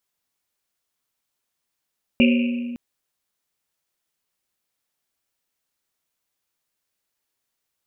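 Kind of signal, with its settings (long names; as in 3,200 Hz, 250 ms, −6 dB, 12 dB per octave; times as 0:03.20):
drum after Risset length 0.56 s, pitch 240 Hz, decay 2.11 s, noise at 2,600 Hz, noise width 510 Hz, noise 20%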